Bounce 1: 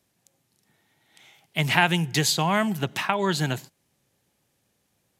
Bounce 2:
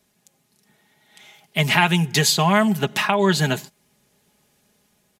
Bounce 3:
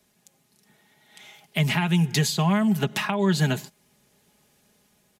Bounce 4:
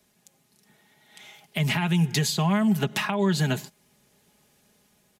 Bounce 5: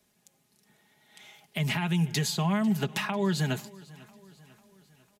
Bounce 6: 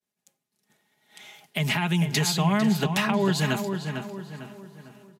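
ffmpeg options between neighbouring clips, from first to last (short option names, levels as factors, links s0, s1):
-filter_complex "[0:a]aecho=1:1:4.8:0.58,dynaudnorm=f=370:g=5:m=1.5,asplit=2[s0][s1];[s1]alimiter=limit=0.237:level=0:latency=1:release=493,volume=0.841[s2];[s0][s2]amix=inputs=2:normalize=0,volume=0.891"
-filter_complex "[0:a]acrossover=split=270[s0][s1];[s1]acompressor=threshold=0.0562:ratio=5[s2];[s0][s2]amix=inputs=2:normalize=0"
-af "alimiter=limit=0.2:level=0:latency=1:release=96"
-af "aecho=1:1:497|994|1491|1988:0.0794|0.0421|0.0223|0.0118,volume=0.631"
-filter_complex "[0:a]agate=range=0.0224:threshold=0.00141:ratio=3:detection=peak,lowshelf=f=87:g=-12,asplit=2[s0][s1];[s1]adelay=451,lowpass=f=2800:p=1,volume=0.473,asplit=2[s2][s3];[s3]adelay=451,lowpass=f=2800:p=1,volume=0.42,asplit=2[s4][s5];[s5]adelay=451,lowpass=f=2800:p=1,volume=0.42,asplit=2[s6][s7];[s7]adelay=451,lowpass=f=2800:p=1,volume=0.42,asplit=2[s8][s9];[s9]adelay=451,lowpass=f=2800:p=1,volume=0.42[s10];[s0][s2][s4][s6][s8][s10]amix=inputs=6:normalize=0,volume=1.78"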